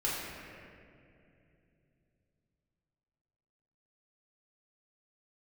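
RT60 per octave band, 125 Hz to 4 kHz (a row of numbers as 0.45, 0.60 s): 4.5, 3.8, 3.1, 2.2, 2.4, 1.5 s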